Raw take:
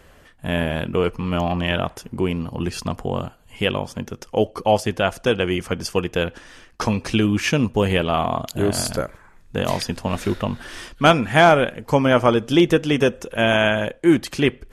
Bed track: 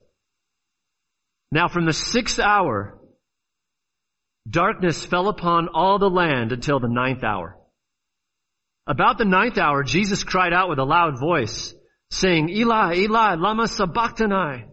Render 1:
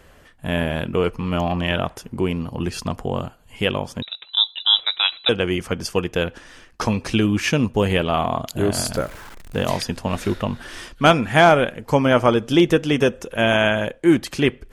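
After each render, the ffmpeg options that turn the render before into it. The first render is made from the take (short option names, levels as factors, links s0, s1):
-filter_complex "[0:a]asettb=1/sr,asplit=3[s0][s1][s2];[s0]atrim=end=4.024[s3];[s1]atrim=start=4.02:end=5.29,asetpts=PTS-STARTPTS,afade=t=in:d=0.004:c=qsin,afade=t=out:st=1.266:d=0.004:c=qsin,lowpass=f=3400:t=q:w=0.5098,lowpass=f=3400:t=q:w=0.6013,lowpass=f=3400:t=q:w=0.9,lowpass=f=3400:t=q:w=2.563,afreqshift=-4000[s4];[s2]atrim=start=5.286[s5];[s3][s4]acrossfade=d=0.004:c1=hsin:c2=qsin[s6];[s6][s5]acrossfade=d=0.004:c1=qsin:c2=hsin,asettb=1/sr,asplit=3[s7][s8][s9];[s7]atrim=end=8.954[s10];[s8]atrim=start=8.95:end=9.65,asetpts=PTS-STARTPTS,afade=t=in:d=0.004:c=qsin,afade=t=out:st=0.696:d=0.004:c=qsin,aeval=exprs='val(0)+0.5*0.0168*sgn(val(0))':c=same[s11];[s9]atrim=start=9.646[s12];[s10][s11]acrossfade=d=0.004:c1=hsin:c2=qsin[s13];[s13][s12]acrossfade=d=0.004:c1=qsin:c2=hsin"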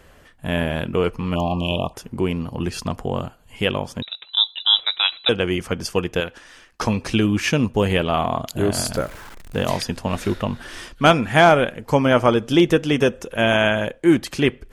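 -filter_complex "[0:a]asplit=3[s0][s1][s2];[s0]afade=t=out:st=1.34:d=0.02[s3];[s1]asuperstop=centerf=1700:order=20:qfactor=1.3,afade=t=in:st=1.34:d=0.02,afade=t=out:st=1.93:d=0.02[s4];[s2]afade=t=in:st=1.93:d=0.02[s5];[s3][s4][s5]amix=inputs=3:normalize=0,asettb=1/sr,asplit=3[s6][s7][s8];[s6]atrim=end=6.204[s9];[s7]atrim=start=6.2:end=6.81,asetpts=PTS-STARTPTS,afade=t=in:d=0.004:c=qsin,afade=t=out:st=0.606:d=0.004:c=qsin,lowshelf=f=460:g=-8.5[s10];[s8]atrim=start=6.806[s11];[s9][s10]acrossfade=d=0.004:c1=hsin:c2=qsin[s12];[s12][s11]acrossfade=d=0.004:c1=qsin:c2=hsin"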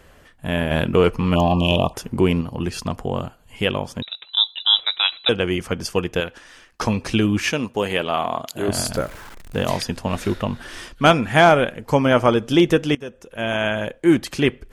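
-filter_complex "[0:a]asettb=1/sr,asplit=3[s0][s1][s2];[s0]atrim=end=0.714[s3];[s1]atrim=start=0.71:end=2.41,asetpts=PTS-STARTPTS,afade=t=in:d=0.004:c=qsin,afade=t=out:st=1.696:d=0.004:c=qsin,acontrast=24[s4];[s2]atrim=start=2.406[s5];[s3][s4]acrossfade=d=0.004:c1=hsin:c2=qsin[s6];[s6][s5]acrossfade=d=0.004:c1=qsin:c2=hsin,asettb=1/sr,asplit=3[s7][s8][s9];[s7]atrim=end=7.524[s10];[s8]atrim=start=7.52:end=8.68,asetpts=PTS-STARTPTS,afade=t=in:d=0.004:c=qsin,afade=t=out:st=1.156:d=0.004:c=qsin,highpass=f=390:p=1[s11];[s9]atrim=start=8.676[s12];[s10][s11]acrossfade=d=0.004:c1=hsin:c2=qsin[s13];[s13][s12]acrossfade=d=0.004:c1=qsin:c2=hsin,asplit=2[s14][s15];[s14]atrim=end=12.95,asetpts=PTS-STARTPTS,afade=t=out:st=12.946:d=0.004:c=hsin:silence=0.0841395[s16];[s15]atrim=start=12.95,asetpts=PTS-STARTPTS,afade=t=in:d=1.16:silence=0.0841395[s17];[s16][s17]concat=n=2:v=0:a=1"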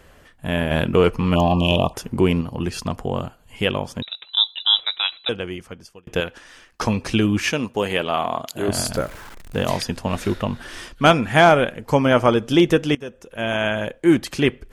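-filter_complex "[0:a]asplit=2[s0][s1];[s0]atrim=end=6.07,asetpts=PTS-STARTPTS,afade=t=out:st=4.59:d=1.48[s2];[s1]atrim=start=6.07,asetpts=PTS-STARTPTS,afade=t=in:d=0.004:c=hsin[s3];[s2][s3]concat=n=2:v=0:a=1"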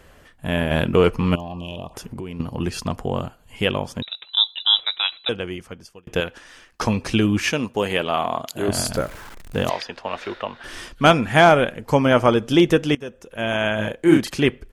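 -filter_complex "[0:a]asettb=1/sr,asplit=3[s0][s1][s2];[s0]atrim=end=1.354[s3];[s1]atrim=start=1.35:end=2.4,asetpts=PTS-STARTPTS,afade=t=in:d=0.004:c=qsin,afade=t=out:st=1.046:d=0.004:c=qsin,acompressor=threshold=0.0316:ratio=5:attack=3.2:release=140:knee=1:detection=peak[s4];[s2]atrim=start=2.396[s5];[s3][s4]acrossfade=d=0.004:c1=hsin:c2=qsin[s6];[s6][s5]acrossfade=d=0.004:c1=qsin:c2=hsin,asettb=1/sr,asplit=3[s7][s8][s9];[s7]atrim=end=9.694[s10];[s8]atrim=start=9.69:end=10.64,asetpts=PTS-STARTPTS,afade=t=in:d=0.004:c=qsin,afade=t=out:st=0.946:d=0.004:c=qsin,acrossover=split=410 4800:gain=0.112 1 0.0708[s11][s12][s13];[s11][s12][s13]amix=inputs=3:normalize=0[s14];[s9]atrim=start=10.636[s15];[s10][s14]acrossfade=d=0.004:c1=hsin:c2=qsin[s16];[s16][s15]acrossfade=d=0.004:c1=qsin:c2=hsin,asplit=3[s17][s18][s19];[s17]afade=t=out:st=13.78:d=0.02[s20];[s18]asplit=2[s21][s22];[s22]adelay=37,volume=0.708[s23];[s21][s23]amix=inputs=2:normalize=0,afade=t=in:st=13.78:d=0.02,afade=t=out:st=14.28:d=0.02[s24];[s19]afade=t=in:st=14.28:d=0.02[s25];[s20][s24][s25]amix=inputs=3:normalize=0"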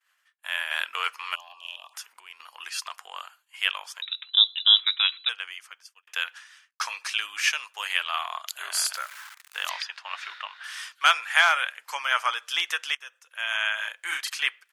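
-af "agate=range=0.0224:threshold=0.0112:ratio=3:detection=peak,highpass=f=1200:w=0.5412,highpass=f=1200:w=1.3066"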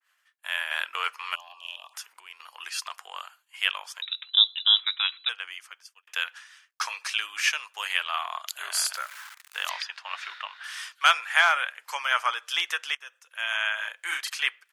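-af "highpass=f=260:w=0.5412,highpass=f=260:w=1.3066,adynamicequalizer=threshold=0.0224:dfrequency=2300:dqfactor=0.7:tfrequency=2300:tqfactor=0.7:attack=5:release=100:ratio=0.375:range=3:mode=cutabove:tftype=highshelf"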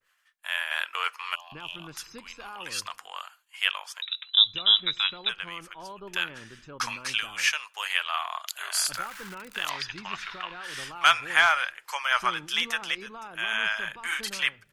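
-filter_complex "[1:a]volume=0.0562[s0];[0:a][s0]amix=inputs=2:normalize=0"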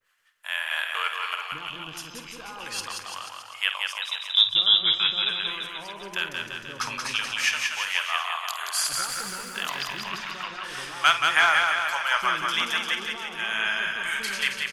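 -filter_complex "[0:a]asplit=2[s0][s1];[s1]adelay=50,volume=0.266[s2];[s0][s2]amix=inputs=2:normalize=0,aecho=1:1:180|342|487.8|619|737.1:0.631|0.398|0.251|0.158|0.1"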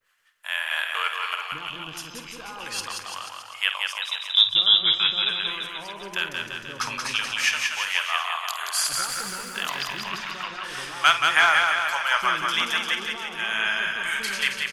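-af "volume=1.19"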